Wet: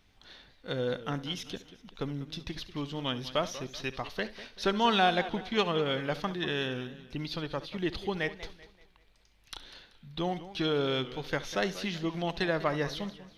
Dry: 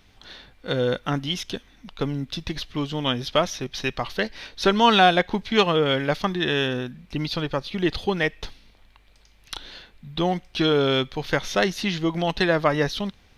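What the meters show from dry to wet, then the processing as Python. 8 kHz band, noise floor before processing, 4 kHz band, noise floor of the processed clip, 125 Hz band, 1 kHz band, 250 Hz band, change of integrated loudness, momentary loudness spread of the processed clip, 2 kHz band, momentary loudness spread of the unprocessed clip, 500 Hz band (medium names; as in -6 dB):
-8.5 dB, -56 dBFS, -9.0 dB, -63 dBFS, -8.5 dB, -9.0 dB, -8.5 dB, -9.0 dB, 15 LU, -9.0 dB, 13 LU, -8.5 dB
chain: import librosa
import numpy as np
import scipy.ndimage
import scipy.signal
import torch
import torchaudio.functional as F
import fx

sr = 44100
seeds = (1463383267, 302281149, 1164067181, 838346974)

y = fx.room_flutter(x, sr, wall_m=11.8, rt60_s=0.25)
y = fx.echo_warbled(y, sr, ms=192, feedback_pct=38, rate_hz=2.8, cents=158, wet_db=-15)
y = y * 10.0 ** (-9.0 / 20.0)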